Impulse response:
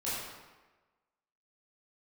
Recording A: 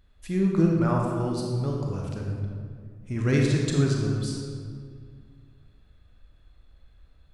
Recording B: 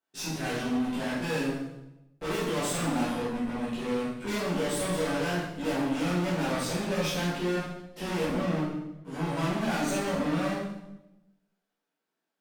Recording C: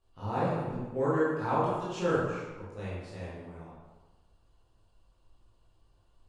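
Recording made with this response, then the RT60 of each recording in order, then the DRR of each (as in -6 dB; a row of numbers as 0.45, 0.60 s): C; 2.0, 0.95, 1.2 s; -1.0, -10.0, -10.5 dB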